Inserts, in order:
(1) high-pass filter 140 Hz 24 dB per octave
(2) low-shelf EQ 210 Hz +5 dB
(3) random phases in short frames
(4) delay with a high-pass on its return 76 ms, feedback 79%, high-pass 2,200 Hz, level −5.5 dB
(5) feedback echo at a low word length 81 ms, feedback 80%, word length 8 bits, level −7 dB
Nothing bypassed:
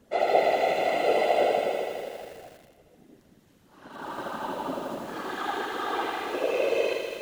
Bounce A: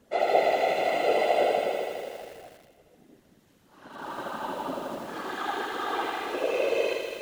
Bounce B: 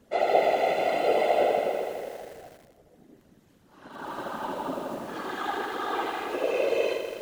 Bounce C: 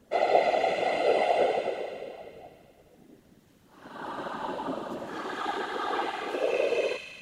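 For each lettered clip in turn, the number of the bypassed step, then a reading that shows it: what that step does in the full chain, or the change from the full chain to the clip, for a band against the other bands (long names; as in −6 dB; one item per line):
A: 2, 125 Hz band −1.5 dB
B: 4, 4 kHz band −1.5 dB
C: 5, 8 kHz band −2.0 dB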